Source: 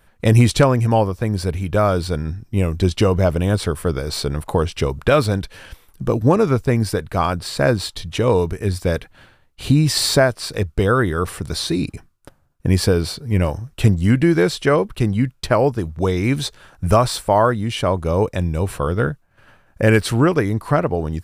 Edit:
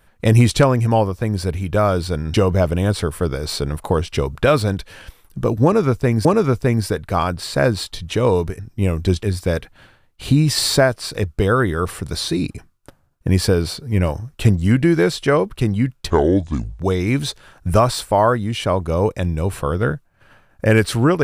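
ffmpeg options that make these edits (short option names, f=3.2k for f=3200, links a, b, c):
-filter_complex "[0:a]asplit=7[a][b][c][d][e][f][g];[a]atrim=end=2.342[h];[b]atrim=start=2.978:end=6.892[i];[c]atrim=start=6.278:end=8.622[j];[d]atrim=start=2.338:end=2.982[k];[e]atrim=start=8.618:end=15.494[l];[f]atrim=start=15.49:end=15.96,asetpts=PTS-STARTPTS,asetrate=29988,aresample=44100[m];[g]atrim=start=15.956[n];[h][i]acrossfade=d=0.004:c1=hsin:c2=hsin[o];[o][j]acrossfade=d=0.004:c1=hsin:c2=hsin[p];[p][k]acrossfade=d=0.004:c1=hsin:c2=hsin[q];[q][l]acrossfade=d=0.004:c1=hsin:c2=hsin[r];[r][m]acrossfade=d=0.004:c1=hsin:c2=hsin[s];[s][n]acrossfade=d=0.004:c1=hsin:c2=hsin"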